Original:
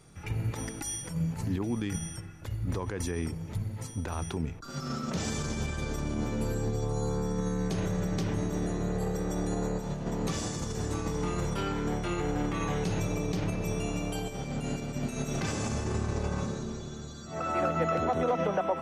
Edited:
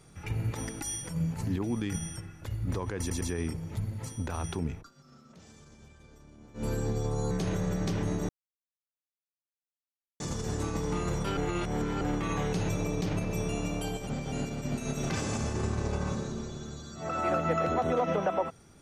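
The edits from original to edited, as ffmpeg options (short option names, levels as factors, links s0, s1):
-filter_complex "[0:a]asplit=12[s0][s1][s2][s3][s4][s5][s6][s7][s8][s9][s10][s11];[s0]atrim=end=3.102[s12];[s1]atrim=start=2.988:end=3.102[s13];[s2]atrim=start=2.988:end=4.69,asetpts=PTS-STARTPTS,afade=t=out:st=1.572:d=0.13:silence=0.0841395[s14];[s3]atrim=start=4.69:end=6.32,asetpts=PTS-STARTPTS,volume=0.0841[s15];[s4]atrim=start=6.32:end=7.092,asetpts=PTS-STARTPTS,afade=t=in:d=0.13:silence=0.0841395[s16];[s5]atrim=start=7.618:end=8.6,asetpts=PTS-STARTPTS,afade=t=out:st=0.978:d=0.004:c=hsin[s17];[s6]atrim=start=8.6:end=10.51,asetpts=PTS-STARTPTS,volume=0[s18];[s7]atrim=start=10.51:end=11.682,asetpts=PTS-STARTPTS,afade=t=in:d=0.004:c=hsin[s19];[s8]atrim=start=11.678:end=12.322,asetpts=PTS-STARTPTS,areverse[s20];[s9]atrim=start=12.318:end=14.382[s21];[s10]atrim=start=14.378:end=14.632,asetpts=PTS-STARTPTS,areverse[s22];[s11]atrim=start=14.628[s23];[s12][s13]acrossfade=d=0.004:c1=hsin:c2=hsin[s24];[s14][s15][s16]concat=n=3:v=0:a=1[s25];[s24][s25]acrossfade=d=0.004:c1=hsin:c2=hsin[s26];[s17][s18][s19]concat=n=3:v=0:a=1[s27];[s26][s27]acrossfade=d=0.004:c1=hsin:c2=hsin[s28];[s28][s20]acrossfade=d=0.004:c1=hsin:c2=hsin[s29];[s29][s21]acrossfade=d=0.004:c1=hsin:c2=hsin[s30];[s30][s22]acrossfade=d=0.004:c1=hsin:c2=hsin[s31];[s31][s23]acrossfade=d=0.004:c1=hsin:c2=hsin"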